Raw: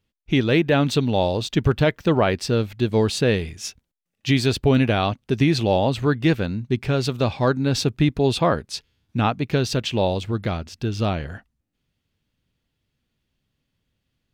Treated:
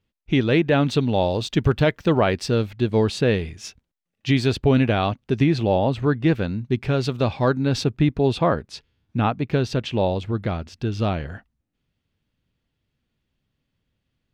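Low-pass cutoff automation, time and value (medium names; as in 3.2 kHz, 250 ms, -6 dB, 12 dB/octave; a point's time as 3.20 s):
low-pass 6 dB/octave
4 kHz
from 1.31 s 8.5 kHz
from 2.70 s 3.6 kHz
from 5.44 s 1.9 kHz
from 6.35 s 4.2 kHz
from 7.84 s 2.3 kHz
from 10.59 s 3.8 kHz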